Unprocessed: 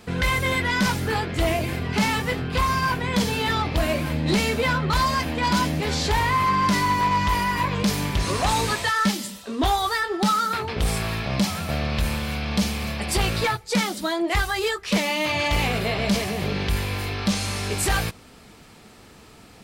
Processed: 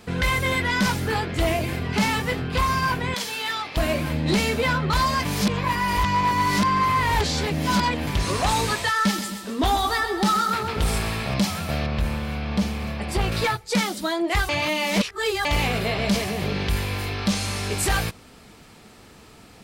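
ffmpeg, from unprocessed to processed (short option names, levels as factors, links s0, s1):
-filter_complex "[0:a]asettb=1/sr,asplit=3[s0][s1][s2];[s0]atrim=end=3.144[s3];[s1]atrim=start=3.14:end=3.77,asetpts=PTS-STARTPTS,afade=t=in:d=0.004:c=qsin,afade=t=out:st=0.626:d=0.004:c=qsin,highpass=f=1400:p=1[s4];[s2]atrim=start=3.766[s5];[s3][s4]acrossfade=d=0.004:c1=hsin:c2=qsin[s6];[s6][s5]acrossfade=d=0.004:c1=qsin:c2=hsin,asettb=1/sr,asplit=3[s7][s8][s9];[s7]atrim=end=8.944[s10];[s8]atrim=start=8.94:end=11.34,asetpts=PTS-STARTPTS,afade=t=in:d=0.004:c=qsin,afade=t=out:st=2.396:d=0.004:c=qsin,aecho=1:1:131|262|393|524|655|786:0.316|0.177|0.0992|0.0555|0.0311|0.0174,atrim=end_sample=105840[s11];[s9]atrim=start=11.336[s12];[s10][s11]acrossfade=d=0.004:c1=hsin:c2=qsin[s13];[s13][s12]acrossfade=d=0.004:c1=qsin:c2=hsin,asettb=1/sr,asplit=3[s14][s15][s16];[s14]atrim=end=11.864[s17];[s15]atrim=start=11.86:end=13.32,asetpts=PTS-STARTPTS,afade=t=in:d=0.004:c=qsin,afade=t=out:st=1.456:d=0.004:c=qsin,highshelf=f=2800:g=-10[s18];[s16]atrim=start=13.316[s19];[s17][s18]acrossfade=d=0.004:c1=hsin:c2=qsin[s20];[s20][s19]acrossfade=d=0.004:c1=qsin:c2=hsin,asplit=5[s21][s22][s23][s24][s25];[s21]atrim=end=5.252[s26];[s22]atrim=start=5.248:end=8.072,asetpts=PTS-STARTPTS,areverse[s27];[s23]atrim=start=8.068:end=14.492[s28];[s24]atrim=start=14.488:end=15.452,asetpts=PTS-STARTPTS,areverse[s29];[s25]atrim=start=15.448[s30];[s26][s27]acrossfade=d=0.004:c1=hsin:c2=hsin[s31];[s31][s28]acrossfade=d=0.004:c1=hsin:c2=hsin[s32];[s32][s29]acrossfade=d=0.004:c1=hsin:c2=hsin[s33];[s33][s30]acrossfade=d=0.004:c1=hsin:c2=hsin"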